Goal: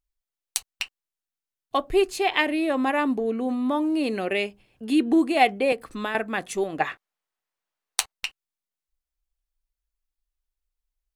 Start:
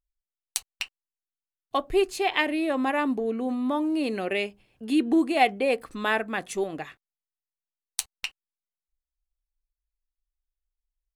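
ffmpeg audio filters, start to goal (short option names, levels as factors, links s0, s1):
-filter_complex "[0:a]asettb=1/sr,asplit=3[s0][s1][s2];[s0]atrim=end=5.724[s3];[s1]atrim=start=5.72:end=6.15,asetpts=PTS-STARTPTS,afade=t=in:d=0.004:c=qsin,afade=t=out:st=0.426:d=0.004:c=qsin,acrossover=split=160[s4][s5];[s5]acompressor=threshold=0.0398:ratio=6[s6];[s4][s6]amix=inputs=2:normalize=0[s7];[s2]atrim=start=6.146[s8];[s3][s7]acrossfade=d=0.004:c1=hsin:c2=qsin[s9];[s9][s8]acrossfade=d=0.004:c1=qsin:c2=hsin,asettb=1/sr,asplit=3[s10][s11][s12];[s10]atrim=end=6.804[s13];[s11]atrim=start=6.8:end=8.12,asetpts=PTS-STARTPTS,afade=t=in:d=0.004:c=qsin,afade=t=out:st=1.316:d=0.004:c=qsin,equalizer=f=1000:w=0.31:g=12.5[s14];[s12]atrim=start=8.116[s15];[s13][s14]acrossfade=d=0.004:c1=hsin:c2=qsin[s16];[s16][s15]acrossfade=d=0.004:c1=qsin:c2=hsin,volume=1.26"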